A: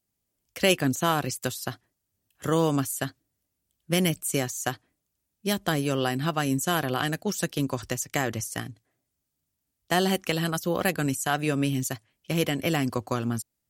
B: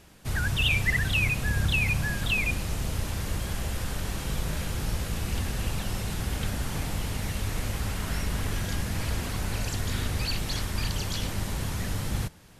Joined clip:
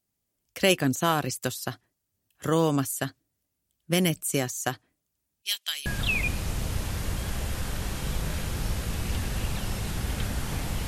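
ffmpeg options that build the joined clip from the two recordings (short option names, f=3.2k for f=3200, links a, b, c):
-filter_complex "[0:a]asettb=1/sr,asplit=3[a][b][c];[a]atrim=end=5.424[d];[b]atrim=start=5.42:end=5.86,asetpts=PTS-STARTPTS,afade=t=in:d=0.004:c=qsin,afade=t=out:st=0.436:d=0.004:c=qsin,highpass=f=3k:t=q:w=1.9[e];[c]atrim=start=5.856[f];[d][e]acrossfade=d=0.004:c1=hsin:c2=qsin[g];[g][f]acrossfade=d=0.004:c1=qsin:c2=hsin,apad=whole_dur=10.87,atrim=end=10.87,atrim=end=5.862[h];[1:a]atrim=start=2.088:end=7.1[i];[h][i]acrossfade=d=0.004:c1=hsin:c2=hsin"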